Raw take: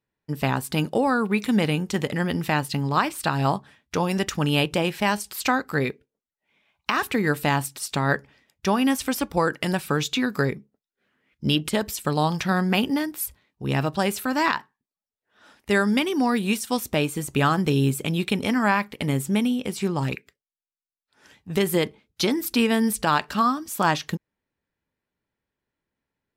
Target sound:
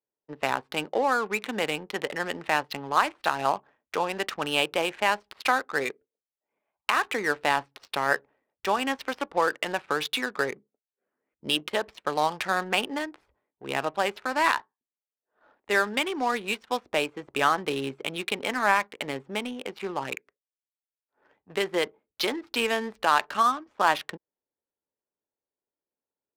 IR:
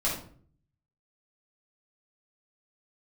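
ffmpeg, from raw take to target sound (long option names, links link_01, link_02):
-filter_complex "[0:a]acrossover=split=380 5300:gain=0.0794 1 0.158[link_01][link_02][link_03];[link_01][link_02][link_03]amix=inputs=3:normalize=0,adynamicsmooth=sensitivity=8:basefreq=690"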